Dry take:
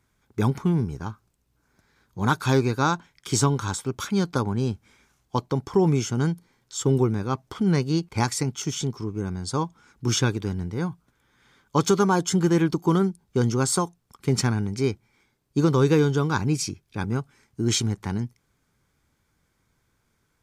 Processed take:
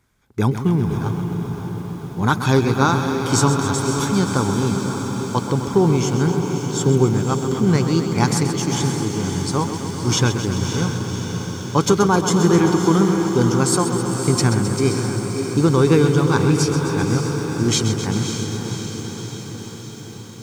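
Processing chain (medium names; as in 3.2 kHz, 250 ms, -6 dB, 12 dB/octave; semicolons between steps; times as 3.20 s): on a send: echo that smears into a reverb 573 ms, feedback 66%, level -7 dB; on the sum: bit-crushed delay 131 ms, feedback 80%, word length 8-bit, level -10 dB; trim +4 dB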